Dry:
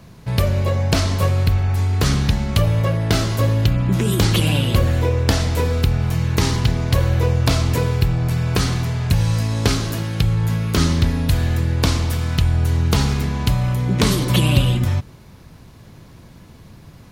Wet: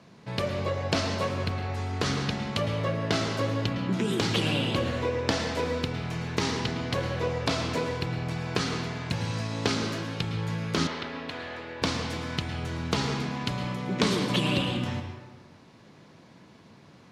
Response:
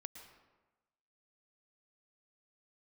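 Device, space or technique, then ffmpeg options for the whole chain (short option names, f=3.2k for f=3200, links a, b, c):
supermarket ceiling speaker: -filter_complex "[0:a]highpass=200,lowpass=5.8k[a];[1:a]atrim=start_sample=2205[b];[a][b]afir=irnorm=-1:irlink=0,asettb=1/sr,asplit=3[c][d][e];[c]atrim=end=10.874[f];[d]atrim=start=10.87:end=11.82,asetpts=PTS-STARTPTS,afade=t=in:d=0.004:c=qsin,afade=t=out:st=0.946:d=0.004:c=qsin,acrossover=split=360 4000:gain=0.158 1 0.178[g][h][i];[g][h][i]amix=inputs=3:normalize=0[j];[e]atrim=start=11.816[k];[f][j]acrossfade=d=0.004:c1=hsin:c2=qsin[l];[l][k]acrossfade=d=0.004:c1=qsin:c2=hsin"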